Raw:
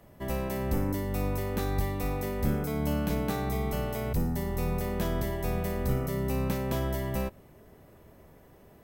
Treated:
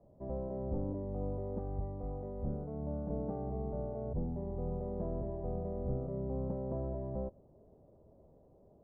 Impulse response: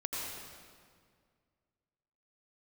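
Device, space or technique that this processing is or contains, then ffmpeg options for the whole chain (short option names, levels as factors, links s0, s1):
under water: -filter_complex "[0:a]asettb=1/sr,asplit=3[s0][s1][s2];[s0]atrim=end=1.594[s3];[s1]atrim=start=1.59:end=3.09,asetpts=PTS-STARTPTS,afade=t=in:d=0.004:c=qsin,afade=t=out:st=1.496:d=0.004:c=qsin,equalizer=f=340:t=o:w=2.1:g=-4[s4];[s2]atrim=start=3.086[s5];[s3][s4]acrossfade=d=0.004:c1=hsin:c2=qsin[s6];[s6][s5]acrossfade=d=0.004:c1=qsin:c2=hsin,lowpass=f=800:w=0.5412,lowpass=f=800:w=1.3066,equalizer=f=560:t=o:w=0.56:g=5,volume=0.398"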